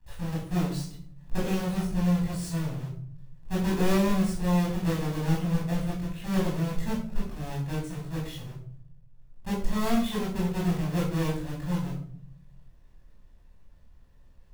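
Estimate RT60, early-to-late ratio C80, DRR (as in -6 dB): 0.55 s, 8.5 dB, -6.0 dB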